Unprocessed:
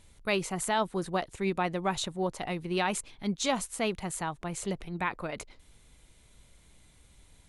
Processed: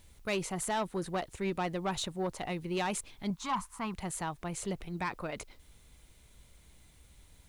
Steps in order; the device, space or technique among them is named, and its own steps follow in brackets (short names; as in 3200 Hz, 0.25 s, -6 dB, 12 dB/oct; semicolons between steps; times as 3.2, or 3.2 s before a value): 3.3–3.94 EQ curve 200 Hz 0 dB, 580 Hz -18 dB, 1000 Hz +12 dB, 1700 Hz -3 dB, 3300 Hz -10 dB; open-reel tape (soft clip -24 dBFS, distortion -15 dB; bell 64 Hz +4 dB; white noise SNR 36 dB); gain -1.5 dB